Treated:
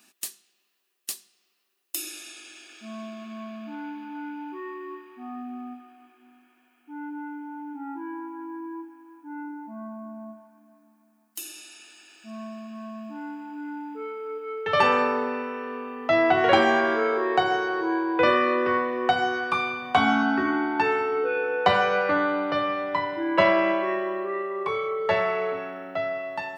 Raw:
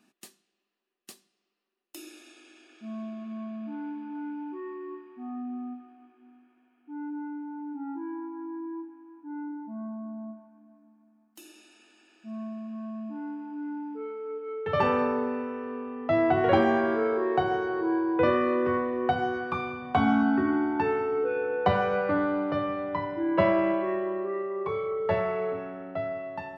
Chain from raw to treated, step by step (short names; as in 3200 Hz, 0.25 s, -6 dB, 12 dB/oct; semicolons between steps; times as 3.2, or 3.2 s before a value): tilt +3.5 dB/oct; gain +5.5 dB